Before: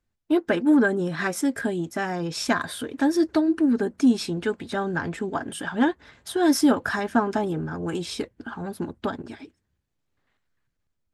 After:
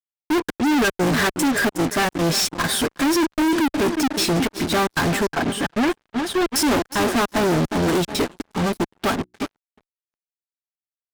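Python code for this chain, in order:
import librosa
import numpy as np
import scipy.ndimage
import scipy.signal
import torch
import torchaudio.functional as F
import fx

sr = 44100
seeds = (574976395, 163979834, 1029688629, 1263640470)

p1 = fx.step_gate(x, sr, bpm=151, pattern='x.xxx.xx', floor_db=-60.0, edge_ms=4.5)
p2 = p1 + fx.echo_feedback(p1, sr, ms=362, feedback_pct=55, wet_db=-17.0, dry=0)
p3 = fx.fuzz(p2, sr, gain_db=44.0, gate_db=-42.0)
p4 = fx.high_shelf(p3, sr, hz=5600.0, db=-9.0, at=(5.3, 6.47))
p5 = fx.hum_notches(p4, sr, base_hz=60, count=6, at=(9.02, 9.42))
p6 = fx.level_steps(p5, sr, step_db=23)
p7 = p5 + (p6 * librosa.db_to_amplitude(-0.5))
p8 = fx.upward_expand(p7, sr, threshold_db=-31.0, expansion=2.5)
y = p8 * librosa.db_to_amplitude(-5.5)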